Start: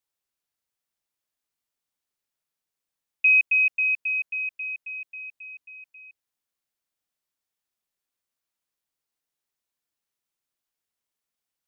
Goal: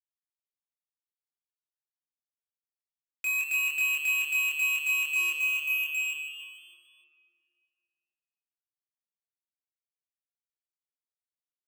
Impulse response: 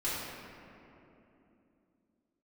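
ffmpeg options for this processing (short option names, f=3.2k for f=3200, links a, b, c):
-filter_complex "[0:a]agate=range=-7dB:threshold=-38dB:ratio=16:detection=peak,acontrast=80,alimiter=limit=-17dB:level=0:latency=1:release=73,acompressor=threshold=-30dB:ratio=12,lowpass=f=2.4k:t=q:w=5.7,acrusher=bits=4:mix=0:aa=0.5,asoftclip=type=hard:threshold=-35.5dB,asplit=2[a][b];[b]adelay=25,volume=-3.5dB[c];[a][c]amix=inputs=2:normalize=0,asplit=7[d][e][f][g][h][i][j];[e]adelay=151,afreqshift=150,volume=-10dB[k];[f]adelay=302,afreqshift=300,volume=-15dB[l];[g]adelay=453,afreqshift=450,volume=-20.1dB[m];[h]adelay=604,afreqshift=600,volume=-25.1dB[n];[i]adelay=755,afreqshift=750,volume=-30.1dB[o];[j]adelay=906,afreqshift=900,volume=-35.2dB[p];[d][k][l][m][n][o][p]amix=inputs=7:normalize=0,asplit=2[q][r];[1:a]atrim=start_sample=2205,lowpass=2.3k[s];[r][s]afir=irnorm=-1:irlink=0,volume=-8dB[t];[q][t]amix=inputs=2:normalize=0,volume=5.5dB"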